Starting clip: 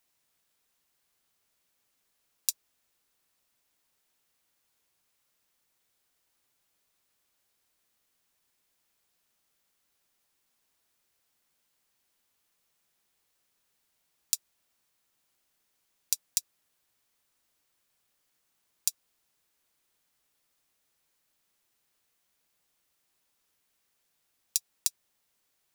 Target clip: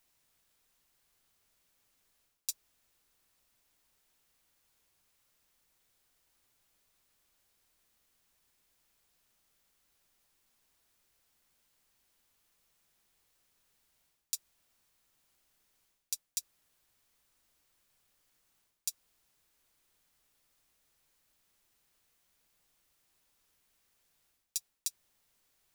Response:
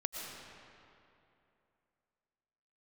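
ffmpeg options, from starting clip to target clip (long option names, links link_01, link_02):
-af "lowshelf=frequency=75:gain=11,areverse,acompressor=threshold=-35dB:ratio=6,areverse,volume=1.5dB"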